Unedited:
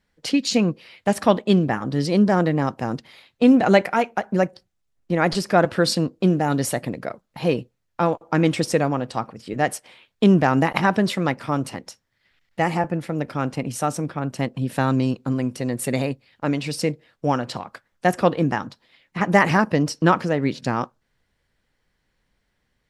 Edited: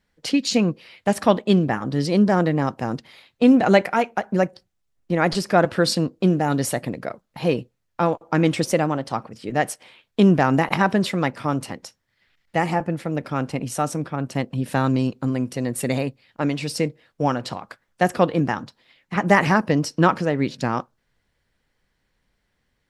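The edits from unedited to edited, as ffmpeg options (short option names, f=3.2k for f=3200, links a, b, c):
-filter_complex "[0:a]asplit=3[a][b][c];[a]atrim=end=8.664[d];[b]atrim=start=8.66:end=9.16,asetpts=PTS-STARTPTS,asetrate=47628,aresample=44100[e];[c]atrim=start=9.156[f];[d][e]acrossfade=d=0.004:c1=hsin:c2=hsin[g];[g][f]acrossfade=d=0.004:c1=hsin:c2=hsin"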